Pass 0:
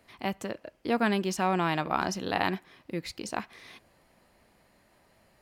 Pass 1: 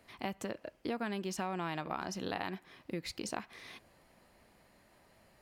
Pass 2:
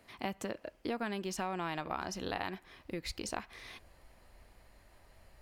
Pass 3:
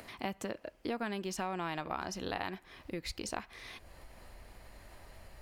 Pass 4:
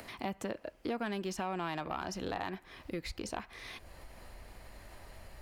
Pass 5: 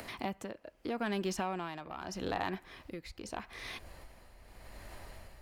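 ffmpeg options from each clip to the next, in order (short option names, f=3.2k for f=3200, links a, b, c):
-af "acompressor=threshold=-33dB:ratio=6,volume=-1dB"
-af "asubboost=boost=8.5:cutoff=63,volume=1dB"
-af "acompressor=mode=upward:threshold=-43dB:ratio=2.5"
-filter_complex "[0:a]acrossover=split=640|2200[a][b][c];[c]alimiter=level_in=12dB:limit=-24dB:level=0:latency=1:release=449,volume=-12dB[d];[a][b][d]amix=inputs=3:normalize=0,asoftclip=type=tanh:threshold=-27dB,volume=2dB"
-af "tremolo=f=0.81:d=0.68,volume=3dB"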